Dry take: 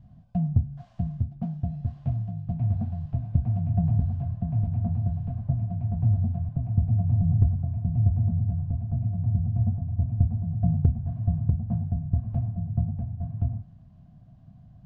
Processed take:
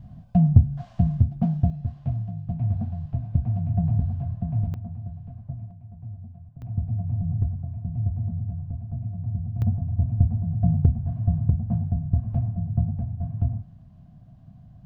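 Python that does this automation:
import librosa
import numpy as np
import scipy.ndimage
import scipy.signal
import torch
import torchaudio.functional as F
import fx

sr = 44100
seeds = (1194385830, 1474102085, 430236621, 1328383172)

y = fx.gain(x, sr, db=fx.steps((0.0, 8.0), (1.7, 0.5), (4.74, -8.5), (5.71, -15.5), (6.62, -4.0), (9.62, 2.5)))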